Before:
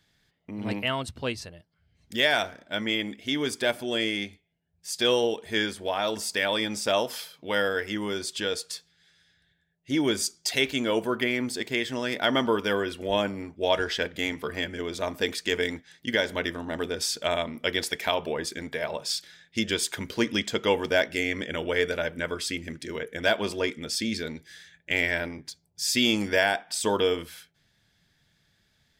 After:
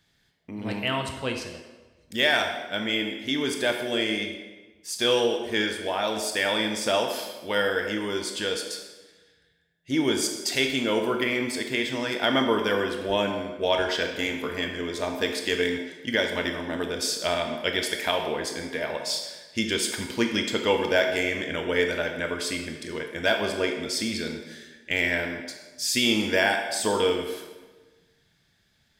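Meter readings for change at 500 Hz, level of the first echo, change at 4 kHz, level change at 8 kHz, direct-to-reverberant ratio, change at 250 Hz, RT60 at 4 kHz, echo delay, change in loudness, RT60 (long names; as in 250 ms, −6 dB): +1.5 dB, no echo audible, +1.5 dB, +1.5 dB, 3.5 dB, +1.5 dB, 0.95 s, no echo audible, +1.5 dB, 1.2 s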